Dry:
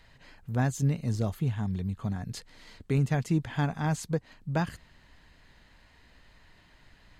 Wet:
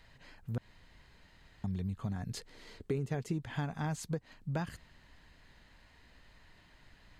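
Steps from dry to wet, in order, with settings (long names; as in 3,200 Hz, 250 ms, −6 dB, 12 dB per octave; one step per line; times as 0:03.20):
0:00.58–0:01.64: fill with room tone
0:02.35–0:03.33: parametric band 410 Hz +9.5 dB 0.63 octaves
downward compressor 5 to 1, threshold −29 dBFS, peak gain reduction 10 dB
level −2.5 dB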